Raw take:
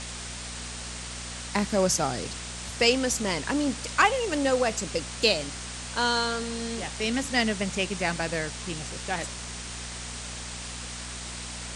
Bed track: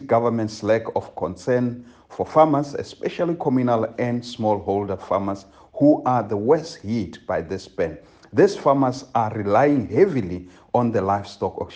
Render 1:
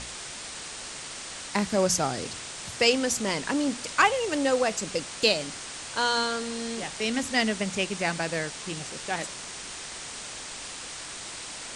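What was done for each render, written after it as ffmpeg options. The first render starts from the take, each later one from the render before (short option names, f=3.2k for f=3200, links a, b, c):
-af "bandreject=f=60:t=h:w=4,bandreject=f=120:t=h:w=4,bandreject=f=180:t=h:w=4,bandreject=f=240:t=h:w=4"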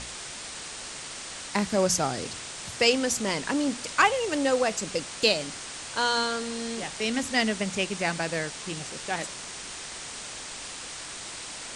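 -af anull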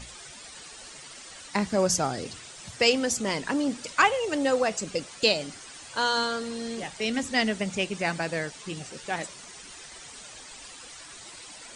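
-af "afftdn=nr=11:nf=-39"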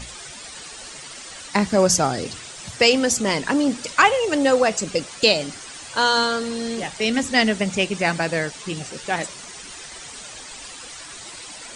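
-af "volume=7dB,alimiter=limit=-3dB:level=0:latency=1"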